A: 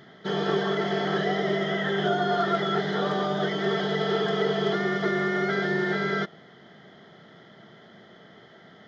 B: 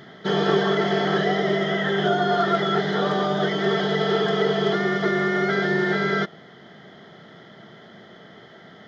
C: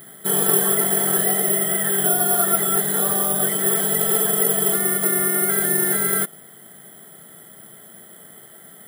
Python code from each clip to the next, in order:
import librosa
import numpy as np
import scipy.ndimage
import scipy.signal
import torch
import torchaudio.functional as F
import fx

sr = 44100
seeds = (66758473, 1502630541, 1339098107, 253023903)

y1 = fx.rider(x, sr, range_db=3, speed_s=2.0)
y1 = y1 * 10.0 ** (4.0 / 20.0)
y2 = (np.kron(scipy.signal.resample_poly(y1, 1, 4), np.eye(4)[0]) * 4)[:len(y1)]
y2 = y2 * 10.0 ** (-4.0 / 20.0)